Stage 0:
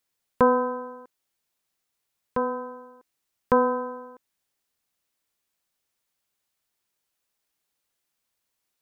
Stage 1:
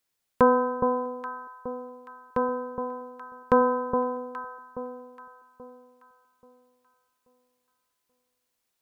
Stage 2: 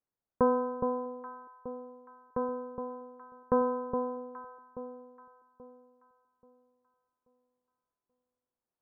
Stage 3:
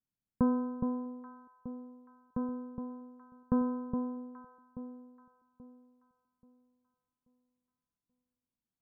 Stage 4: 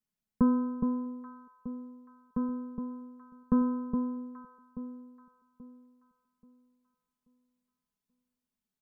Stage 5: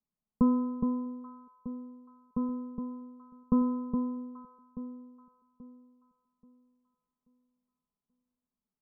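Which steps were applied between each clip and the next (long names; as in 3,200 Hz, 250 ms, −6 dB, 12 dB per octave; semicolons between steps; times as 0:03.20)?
delay that swaps between a low-pass and a high-pass 416 ms, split 1,000 Hz, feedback 55%, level −4.5 dB
Bessel low-pass filter 940 Hz, order 8; level −5 dB
low shelf with overshoot 320 Hz +11 dB, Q 1.5; level −8 dB
comb filter 4.7 ms, depth 77%
Butterworth low-pass 1,300 Hz 72 dB per octave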